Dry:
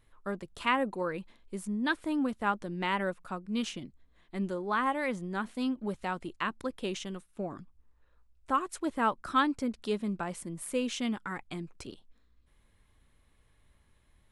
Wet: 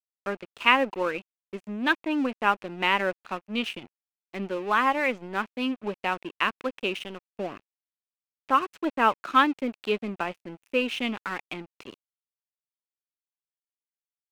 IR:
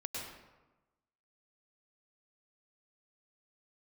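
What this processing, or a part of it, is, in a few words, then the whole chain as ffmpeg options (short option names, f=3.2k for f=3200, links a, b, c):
pocket radio on a weak battery: -af "highpass=270,lowpass=3.4k,aeval=exprs='sgn(val(0))*max(abs(val(0))-0.00355,0)':c=same,equalizer=f=2.6k:t=o:w=0.42:g=10,volume=7dB"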